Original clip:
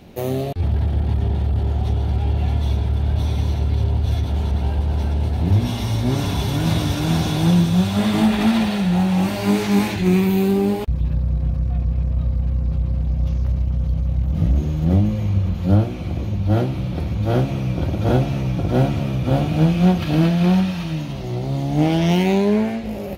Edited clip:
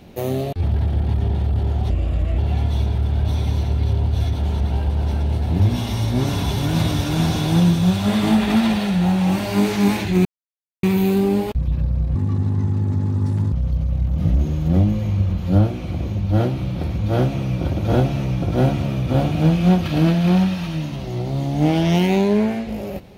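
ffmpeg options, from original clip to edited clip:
-filter_complex "[0:a]asplit=6[a][b][c][d][e][f];[a]atrim=end=1.904[g];[b]atrim=start=1.9:end=2.29,asetpts=PTS-STARTPTS,asetrate=35721,aresample=44100,atrim=end_sample=21233,asetpts=PTS-STARTPTS[h];[c]atrim=start=2.286:end=10.16,asetpts=PTS-STARTPTS,afade=t=out:st=7.87:d=0.004:c=hsin,apad=pad_dur=0.58[i];[d]atrim=start=10.16:end=11.484,asetpts=PTS-STARTPTS,afade=t=in:d=0.004:c=hsin[j];[e]atrim=start=11.48:end=13.69,asetpts=PTS-STARTPTS,asetrate=71001,aresample=44100[k];[f]atrim=start=13.686[l];[g][h]acrossfade=d=0.004:c1=hsin:c2=hsin[m];[i][j]concat=n=2:v=0:a=1[n];[m][n]acrossfade=d=0.004:c1=hsin:c2=hsin[o];[o][k]acrossfade=d=0.004:c1=hsin:c2=hsin[p];[p][l]acrossfade=d=0.004:c1=hsin:c2=hsin"

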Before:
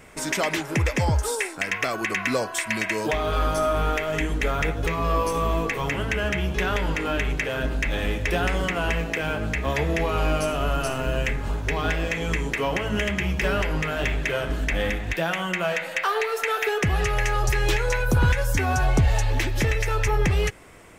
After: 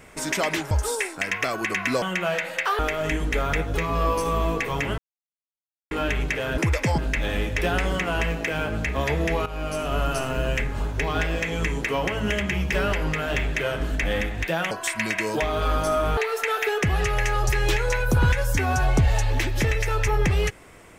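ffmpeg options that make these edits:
-filter_complex "[0:a]asplit=11[a][b][c][d][e][f][g][h][i][j][k];[a]atrim=end=0.712[l];[b]atrim=start=1.108:end=2.422[m];[c]atrim=start=15.398:end=16.172[n];[d]atrim=start=3.878:end=6.07,asetpts=PTS-STARTPTS,afade=t=out:st=2.188:d=0.004:c=hsin[o];[e]atrim=start=6.07:end=7,asetpts=PTS-STARTPTS,volume=0[p];[f]atrim=start=7:end=7.672,asetpts=PTS-STARTPTS,afade=t=in:d=0.004:c=hsin[q];[g]atrim=start=0.708:end=1.112[r];[h]atrim=start=7.668:end=10.15,asetpts=PTS-STARTPTS,afade=t=out:st=2.478:d=0.004:c=hsin:silence=0.188365[s];[i]atrim=start=10.15:end=15.402,asetpts=PTS-STARTPTS,afade=t=in:d=0.5:silence=0.188365[t];[j]atrim=start=2.418:end=3.882[u];[k]atrim=start=16.168[v];[l][m]acrossfade=d=0.004:c1=hsin:c2=hsin[w];[w][n]acrossfade=d=0.004:c1=hsin:c2=hsin[x];[o][p][q]concat=n=3:v=0:a=1[y];[x][y]acrossfade=d=0.004:c1=hsin:c2=hsin[z];[z][r]acrossfade=d=0.004:c1=hsin:c2=hsin[aa];[s][t]concat=n=2:v=0:a=1[ab];[aa][ab]acrossfade=d=0.004:c1=hsin:c2=hsin[ac];[ac][u]acrossfade=d=0.004:c1=hsin:c2=hsin[ad];[ad][v]acrossfade=d=0.004:c1=hsin:c2=hsin"

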